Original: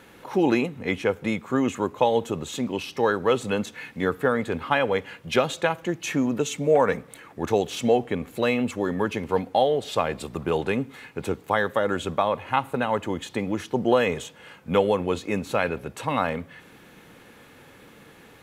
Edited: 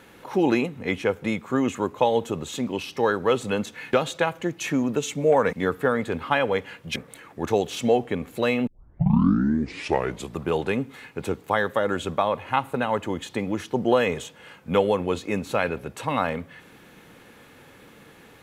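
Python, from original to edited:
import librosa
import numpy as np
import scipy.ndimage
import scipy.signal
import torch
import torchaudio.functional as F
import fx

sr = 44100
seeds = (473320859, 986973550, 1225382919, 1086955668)

y = fx.edit(x, sr, fx.move(start_s=3.93, length_s=1.43, to_s=6.96),
    fx.tape_start(start_s=8.67, length_s=1.69), tone=tone)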